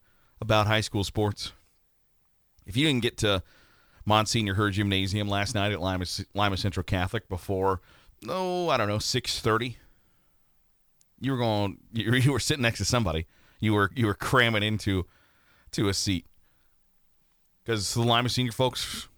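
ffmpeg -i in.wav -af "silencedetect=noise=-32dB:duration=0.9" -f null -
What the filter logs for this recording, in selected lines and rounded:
silence_start: 1.48
silence_end: 2.69 | silence_duration: 1.21
silence_start: 9.72
silence_end: 11.22 | silence_duration: 1.51
silence_start: 16.18
silence_end: 17.68 | silence_duration: 1.50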